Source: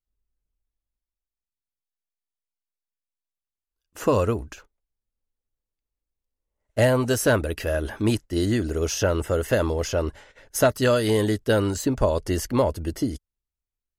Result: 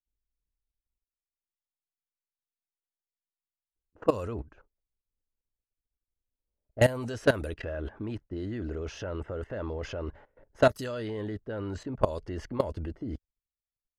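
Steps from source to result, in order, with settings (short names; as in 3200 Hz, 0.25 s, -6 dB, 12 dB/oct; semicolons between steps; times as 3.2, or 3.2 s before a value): level quantiser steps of 17 dB; low-pass opened by the level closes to 550 Hz, open at -23.5 dBFS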